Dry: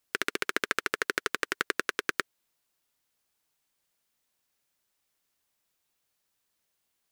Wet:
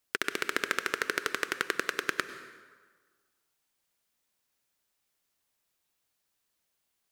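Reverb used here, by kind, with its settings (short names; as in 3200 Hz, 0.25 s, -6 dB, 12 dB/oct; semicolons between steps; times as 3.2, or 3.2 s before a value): plate-style reverb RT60 1.5 s, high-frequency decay 0.7×, pre-delay 85 ms, DRR 11 dB; gain -1 dB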